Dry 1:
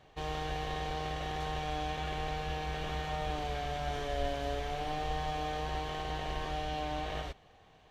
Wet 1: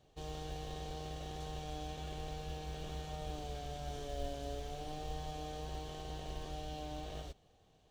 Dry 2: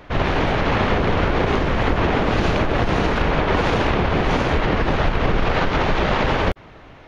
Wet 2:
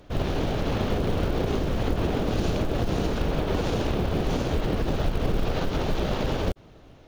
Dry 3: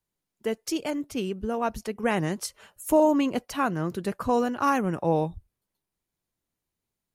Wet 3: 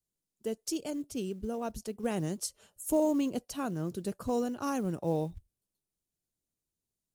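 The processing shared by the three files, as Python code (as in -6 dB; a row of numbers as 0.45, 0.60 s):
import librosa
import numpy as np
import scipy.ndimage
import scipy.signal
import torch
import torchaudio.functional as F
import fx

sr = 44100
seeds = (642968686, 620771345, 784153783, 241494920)

y = fx.graphic_eq(x, sr, hz=(1000, 2000, 8000), db=(-7, -10, 5))
y = fx.quant_float(y, sr, bits=4)
y = F.gain(torch.from_numpy(y), -5.0).numpy()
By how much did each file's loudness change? -8.0, -7.5, -7.0 LU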